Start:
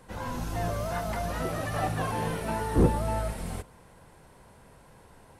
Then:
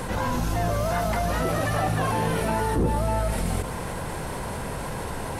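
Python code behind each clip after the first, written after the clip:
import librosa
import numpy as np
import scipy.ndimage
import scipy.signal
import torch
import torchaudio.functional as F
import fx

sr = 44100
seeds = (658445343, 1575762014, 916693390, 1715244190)

y = fx.env_flatten(x, sr, amount_pct=70)
y = y * 10.0 ** (-3.0 / 20.0)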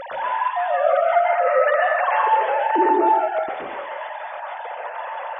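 y = fx.sine_speech(x, sr)
y = fx.rev_plate(y, sr, seeds[0], rt60_s=0.73, hf_ratio=0.85, predelay_ms=110, drr_db=-3.0)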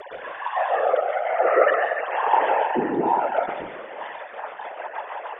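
y = fx.whisperise(x, sr, seeds[1])
y = fx.rotary_switch(y, sr, hz=1.1, then_hz=6.3, switch_at_s=3.85)
y = fx.echo_feedback(y, sr, ms=516, feedback_pct=42, wet_db=-23.0)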